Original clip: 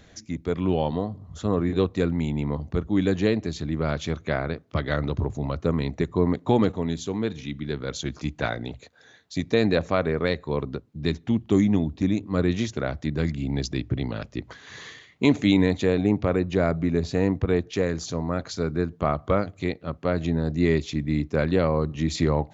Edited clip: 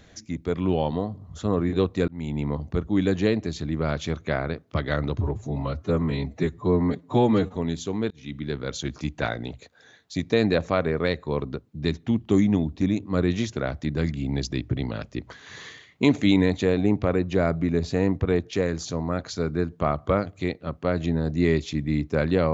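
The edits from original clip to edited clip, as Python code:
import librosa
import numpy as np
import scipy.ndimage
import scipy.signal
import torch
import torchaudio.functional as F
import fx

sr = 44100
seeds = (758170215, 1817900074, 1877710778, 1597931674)

y = fx.edit(x, sr, fx.fade_in_span(start_s=2.08, length_s=0.41, curve='qsin'),
    fx.stretch_span(start_s=5.18, length_s=1.59, factor=1.5),
    fx.fade_in_span(start_s=7.31, length_s=0.26), tone=tone)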